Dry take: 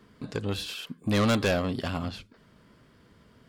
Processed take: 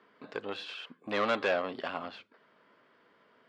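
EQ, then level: band-pass 490–2600 Hz; 0.0 dB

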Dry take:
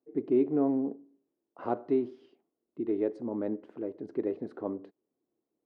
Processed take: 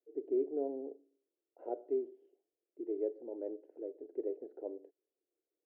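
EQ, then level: ladder band-pass 540 Hz, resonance 25%; static phaser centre 470 Hz, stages 4; +5.0 dB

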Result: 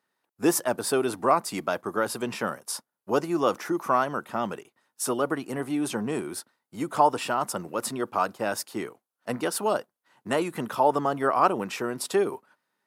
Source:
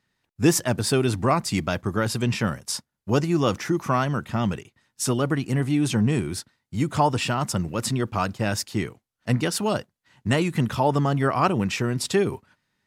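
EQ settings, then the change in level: high-pass 390 Hz 12 dB/octave; high-order bell 3.7 kHz -8 dB 2.4 oct; +1.5 dB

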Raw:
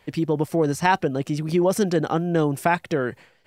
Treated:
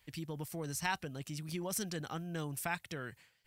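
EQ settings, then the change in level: amplifier tone stack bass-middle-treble 5-5-5; bass shelf 100 Hz +10 dB; treble shelf 9 kHz +9 dB; -2.5 dB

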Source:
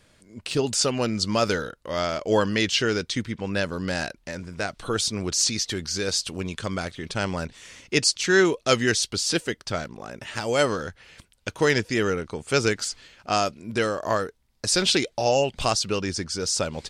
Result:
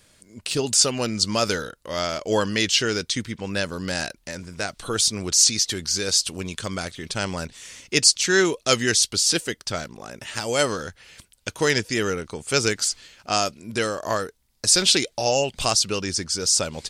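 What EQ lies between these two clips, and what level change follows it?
treble shelf 4.5 kHz +11 dB; -1.0 dB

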